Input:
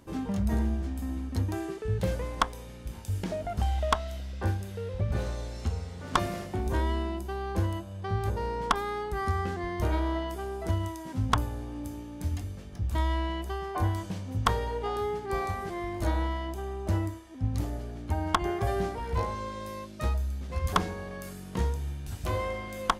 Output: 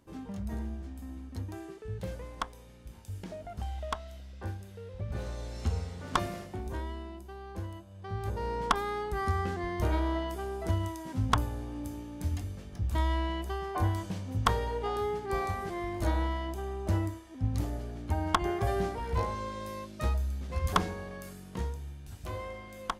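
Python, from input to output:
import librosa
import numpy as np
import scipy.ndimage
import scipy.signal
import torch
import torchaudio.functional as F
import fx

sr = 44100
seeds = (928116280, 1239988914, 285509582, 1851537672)

y = fx.gain(x, sr, db=fx.line((4.94, -9.0), (5.77, 1.0), (6.96, -10.5), (7.87, -10.5), (8.53, -1.0), (20.84, -1.0), (21.92, -8.0)))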